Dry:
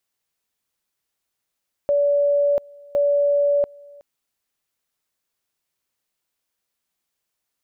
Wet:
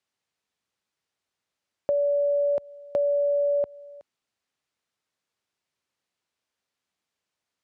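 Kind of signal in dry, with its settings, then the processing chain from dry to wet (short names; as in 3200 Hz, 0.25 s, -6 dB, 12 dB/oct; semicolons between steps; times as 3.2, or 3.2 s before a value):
two-level tone 574 Hz -15 dBFS, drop 26 dB, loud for 0.69 s, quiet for 0.37 s, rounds 2
HPF 69 Hz; compressor 4:1, threshold -22 dBFS; air absorption 69 m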